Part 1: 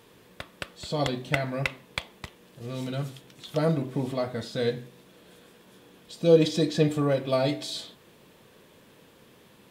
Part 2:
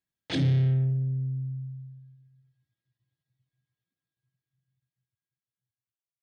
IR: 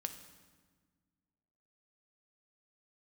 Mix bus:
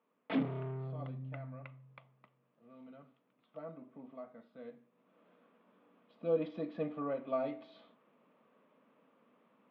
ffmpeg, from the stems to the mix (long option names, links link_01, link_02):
-filter_complex "[0:a]volume=-13.5dB,afade=type=in:start_time=4.89:duration=0.31:silence=0.334965[link_01];[1:a]flanger=delay=3.8:depth=2.8:regen=48:speed=0.37:shape=triangular,volume=29dB,asoftclip=hard,volume=-29dB,volume=2dB[link_02];[link_01][link_02]amix=inputs=2:normalize=0,highpass=frequency=190:width=0.5412,highpass=frequency=190:width=1.3066,equalizer=frequency=250:width_type=q:width=4:gain=6,equalizer=frequency=360:width_type=q:width=4:gain=-7,equalizer=frequency=630:width_type=q:width=4:gain=5,equalizer=frequency=1200:width_type=q:width=4:gain=8,equalizer=frequency=1700:width_type=q:width=4:gain=-6,lowpass=frequency=2400:width=0.5412,lowpass=frequency=2400:width=1.3066"